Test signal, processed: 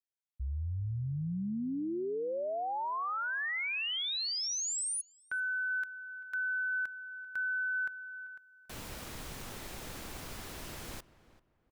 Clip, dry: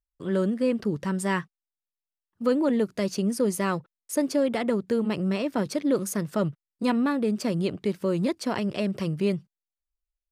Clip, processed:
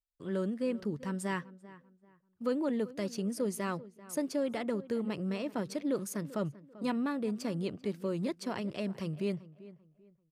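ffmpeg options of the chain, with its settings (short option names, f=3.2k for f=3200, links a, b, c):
-filter_complex "[0:a]asplit=2[a][b];[b]adelay=390,lowpass=f=2k:p=1,volume=-17.5dB,asplit=2[c][d];[d]adelay=390,lowpass=f=2k:p=1,volume=0.29,asplit=2[e][f];[f]adelay=390,lowpass=f=2k:p=1,volume=0.29[g];[a][c][e][g]amix=inputs=4:normalize=0,volume=-8.5dB"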